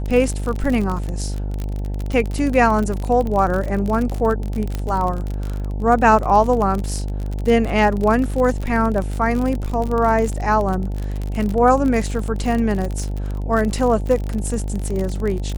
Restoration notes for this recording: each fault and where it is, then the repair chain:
buzz 50 Hz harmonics 18 -24 dBFS
crackle 45/s -22 dBFS
4.75 pop -12 dBFS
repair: de-click; de-hum 50 Hz, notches 18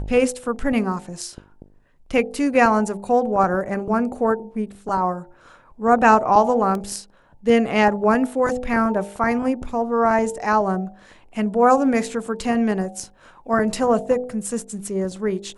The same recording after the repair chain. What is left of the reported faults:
none

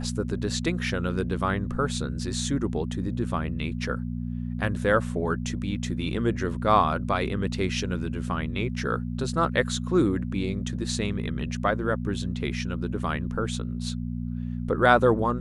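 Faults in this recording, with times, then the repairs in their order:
hum 60 Hz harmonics 4 -31 dBFS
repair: de-hum 60 Hz, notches 4

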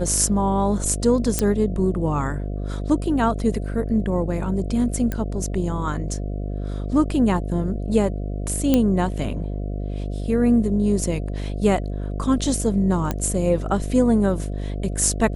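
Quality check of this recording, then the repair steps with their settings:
buzz 50 Hz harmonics 14 -27 dBFS
1.39 pop -5 dBFS
5.12 pop -13 dBFS
8.74 pop -5 dBFS
13.11 pop -10 dBFS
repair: de-click; de-hum 50 Hz, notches 14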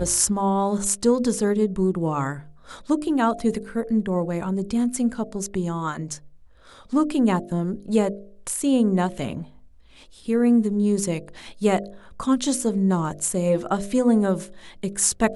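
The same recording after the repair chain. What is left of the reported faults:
none

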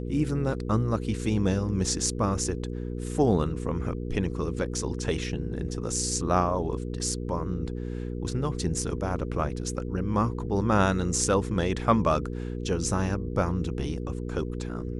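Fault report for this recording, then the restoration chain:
hum 60 Hz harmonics 8 -33 dBFS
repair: de-hum 60 Hz, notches 8

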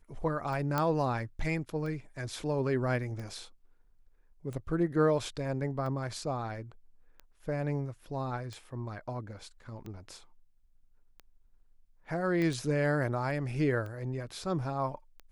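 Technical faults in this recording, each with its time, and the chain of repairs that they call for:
tick 45 rpm
0.78 pop -15 dBFS
12.42 pop -22 dBFS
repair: de-click

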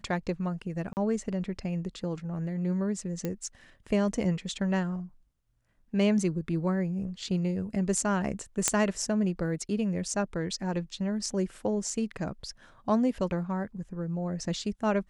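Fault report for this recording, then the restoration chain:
0.93–0.97 gap 39 ms
3.25 pop -18 dBFS
8.68 pop -7 dBFS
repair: de-click; interpolate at 0.93, 39 ms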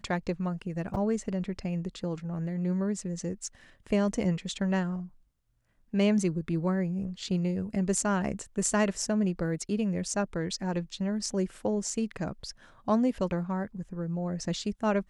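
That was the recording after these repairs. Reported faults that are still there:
none

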